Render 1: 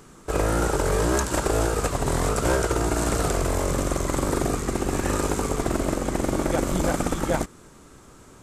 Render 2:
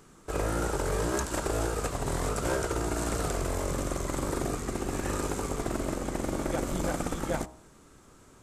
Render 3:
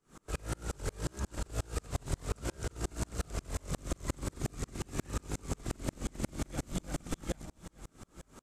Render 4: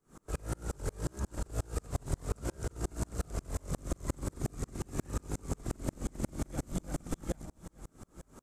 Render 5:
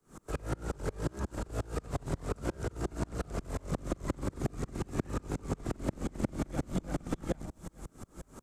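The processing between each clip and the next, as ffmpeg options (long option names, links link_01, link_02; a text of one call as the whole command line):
ffmpeg -i in.wav -af "bandreject=frequency=62.51:width_type=h:width=4,bandreject=frequency=125.02:width_type=h:width=4,bandreject=frequency=187.53:width_type=h:width=4,bandreject=frequency=250.04:width_type=h:width=4,bandreject=frequency=312.55:width_type=h:width=4,bandreject=frequency=375.06:width_type=h:width=4,bandreject=frequency=437.57:width_type=h:width=4,bandreject=frequency=500.08:width_type=h:width=4,bandreject=frequency=562.59:width_type=h:width=4,bandreject=frequency=625.1:width_type=h:width=4,bandreject=frequency=687.61:width_type=h:width=4,bandreject=frequency=750.12:width_type=h:width=4,bandreject=frequency=812.63:width_type=h:width=4,bandreject=frequency=875.14:width_type=h:width=4,bandreject=frequency=937.65:width_type=h:width=4,bandreject=frequency=1000.16:width_type=h:width=4,bandreject=frequency=1062.67:width_type=h:width=4,bandreject=frequency=1125.18:width_type=h:width=4,volume=-6.5dB" out.wav
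ffmpeg -i in.wav -filter_complex "[0:a]acrossover=split=230|2000|8000[link_01][link_02][link_03][link_04];[link_01]acompressor=threshold=-34dB:ratio=4[link_05];[link_02]acompressor=threshold=-45dB:ratio=4[link_06];[link_03]acompressor=threshold=-47dB:ratio=4[link_07];[link_04]acompressor=threshold=-56dB:ratio=4[link_08];[link_05][link_06][link_07][link_08]amix=inputs=4:normalize=0,aecho=1:1:443|886|1329|1772|2215|2658:0.168|0.101|0.0604|0.0363|0.0218|0.0131,aeval=exprs='val(0)*pow(10,-36*if(lt(mod(-5.6*n/s,1),2*abs(-5.6)/1000),1-mod(-5.6*n/s,1)/(2*abs(-5.6)/1000),(mod(-5.6*n/s,1)-2*abs(-5.6)/1000)/(1-2*abs(-5.6)/1000))/20)':channel_layout=same,volume=7.5dB" out.wav
ffmpeg -i in.wav -af "equalizer=frequency=3100:width_type=o:width=1.9:gain=-8,volume=1dB" out.wav
ffmpeg -i in.wav -filter_complex "[0:a]acrossover=split=110|500|4600[link_01][link_02][link_03][link_04];[link_01]asoftclip=type=tanh:threshold=-39dB[link_05];[link_04]acompressor=threshold=-59dB:ratio=6[link_06];[link_05][link_02][link_03][link_06]amix=inputs=4:normalize=0,volume=4dB" out.wav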